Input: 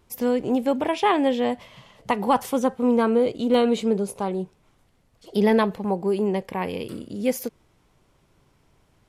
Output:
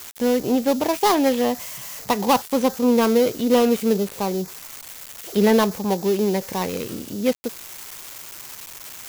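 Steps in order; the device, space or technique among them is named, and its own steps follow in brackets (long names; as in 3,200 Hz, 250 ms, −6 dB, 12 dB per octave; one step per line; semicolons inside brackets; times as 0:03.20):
budget class-D amplifier (gap after every zero crossing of 0.15 ms; spike at every zero crossing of −21.5 dBFS)
level +2.5 dB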